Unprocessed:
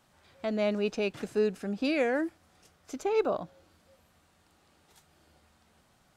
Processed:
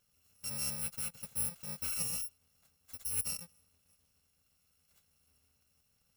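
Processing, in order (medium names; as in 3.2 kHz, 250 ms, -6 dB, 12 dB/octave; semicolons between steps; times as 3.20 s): bit-reversed sample order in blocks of 128 samples; trim -9 dB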